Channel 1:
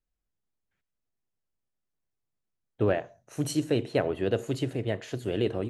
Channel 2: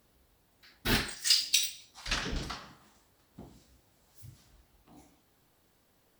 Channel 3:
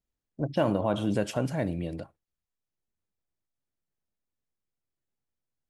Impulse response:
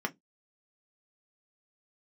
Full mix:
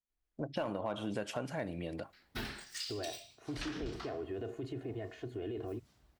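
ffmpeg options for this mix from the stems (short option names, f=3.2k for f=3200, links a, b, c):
-filter_complex "[0:a]highshelf=f=3.6k:g=-12,aecho=1:1:2.8:0.79,alimiter=level_in=0.5dB:limit=-24dB:level=0:latency=1:release=18,volume=-0.5dB,adelay=100,volume=-6.5dB[a];[1:a]alimiter=limit=-20dB:level=0:latency=1:release=176,adelay=1500,volume=-5.5dB[b];[2:a]lowshelf=f=490:g=-10,dynaudnorm=f=110:g=5:m=10dB,asoftclip=type=hard:threshold=-11.5dB,volume=-6.5dB,asplit=2[c][d];[d]volume=-23dB[e];[3:a]atrim=start_sample=2205[f];[e][f]afir=irnorm=-1:irlink=0[g];[a][b][c][g]amix=inputs=4:normalize=0,highshelf=f=5.8k:g=-8.5,acompressor=threshold=-36dB:ratio=3"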